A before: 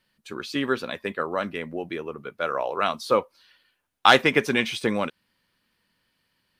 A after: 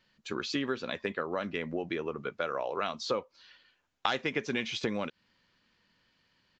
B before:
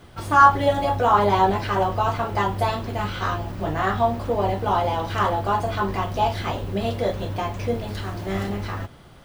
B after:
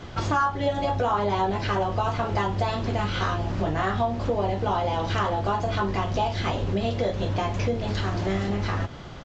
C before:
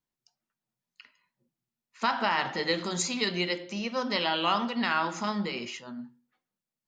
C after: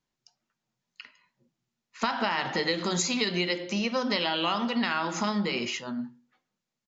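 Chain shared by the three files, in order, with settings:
dynamic EQ 1100 Hz, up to -3 dB, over -33 dBFS, Q 0.92; compressor 4:1, threshold -31 dBFS; downsampling 16000 Hz; normalise peaks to -12 dBFS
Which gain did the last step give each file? +1.5, +7.5, +6.5 dB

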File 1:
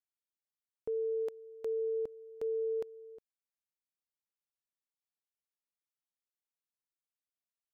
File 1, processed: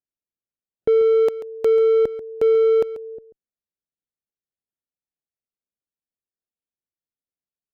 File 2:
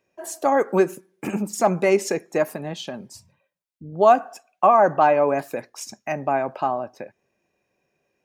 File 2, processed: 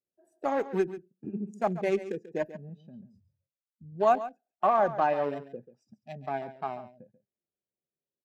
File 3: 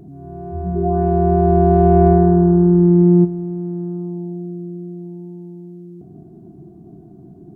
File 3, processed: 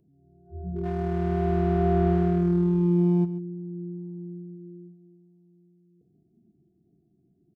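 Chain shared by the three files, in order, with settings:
Wiener smoothing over 41 samples; added harmonics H 4 -40 dB, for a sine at -1 dBFS; spectral noise reduction 14 dB; echo 0.138 s -14 dB; normalise peaks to -12 dBFS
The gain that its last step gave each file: +19.5, -8.0, -10.5 dB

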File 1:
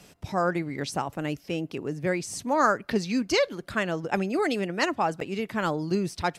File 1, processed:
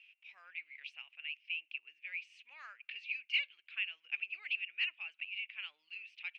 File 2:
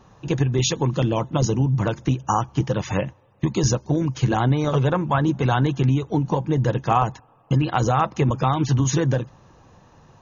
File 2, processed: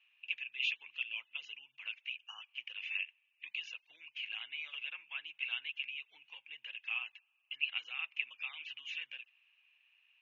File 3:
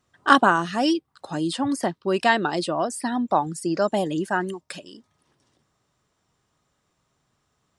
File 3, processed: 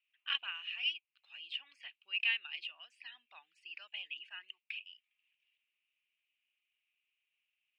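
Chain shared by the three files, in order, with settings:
Butterworth band-pass 2600 Hz, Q 4.5; gain +3 dB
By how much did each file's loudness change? -12.0, -18.5, -15.5 LU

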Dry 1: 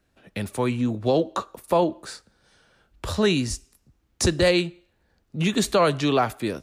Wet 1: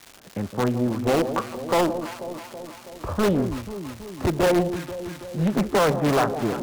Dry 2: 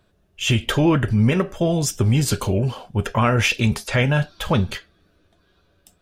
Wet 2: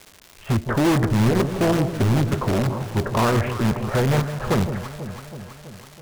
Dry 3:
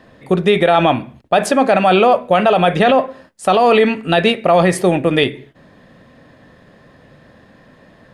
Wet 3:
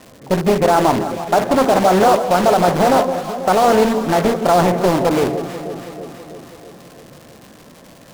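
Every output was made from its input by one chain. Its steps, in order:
LPF 1400 Hz 24 dB/oct; low shelf 91 Hz -5 dB; crackle 410/s -34 dBFS; in parallel at -6 dB: wrapped overs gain 15.5 dB; on the sum: echo with dull and thin repeats by turns 0.163 s, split 820 Hz, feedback 78%, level -9 dB; Doppler distortion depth 0.69 ms; gain -1 dB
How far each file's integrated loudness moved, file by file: -0.5, -1.0, -1.0 LU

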